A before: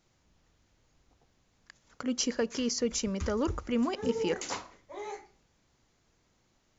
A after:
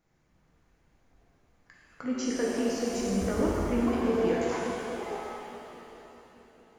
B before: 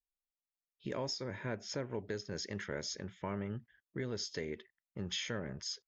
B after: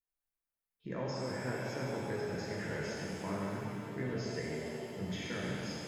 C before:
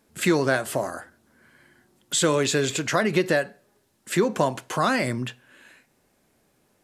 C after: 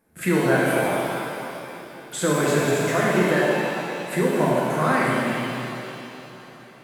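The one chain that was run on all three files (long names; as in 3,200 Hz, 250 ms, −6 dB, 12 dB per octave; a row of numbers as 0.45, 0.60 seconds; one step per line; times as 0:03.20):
flat-topped bell 4,600 Hz −8.5 dB
on a send: feedback echo with a long and a short gap by turns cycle 840 ms, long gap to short 3 to 1, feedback 36%, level −19 dB
on the sum: reverb with rising layers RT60 2.6 s, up +7 semitones, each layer −8 dB, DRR −5 dB
level −3.5 dB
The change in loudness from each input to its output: +2.5, +2.0, +2.0 LU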